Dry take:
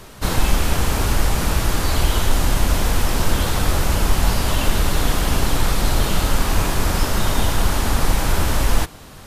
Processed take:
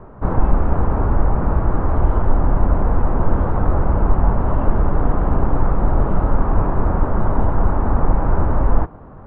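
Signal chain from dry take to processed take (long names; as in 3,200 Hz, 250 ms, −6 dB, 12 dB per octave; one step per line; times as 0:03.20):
low-pass filter 1,200 Hz 24 dB per octave
level +2.5 dB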